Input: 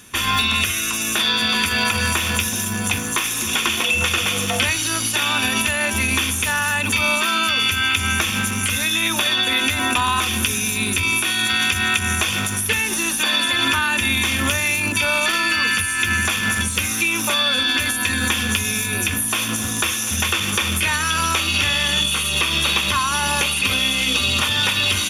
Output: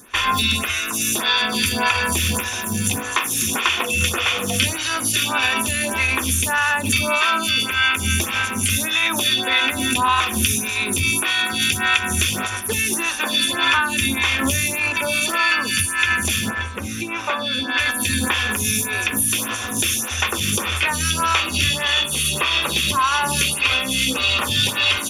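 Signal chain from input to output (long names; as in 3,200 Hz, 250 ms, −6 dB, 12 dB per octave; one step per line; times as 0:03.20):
0:16.49–0:17.77: low-pass filter 1,400 Hz → 2,700 Hz 6 dB per octave
on a send at −16 dB: convolution reverb RT60 0.55 s, pre-delay 3 ms
on the sum: phaser with staggered stages 1.7 Hz
level +3.5 dB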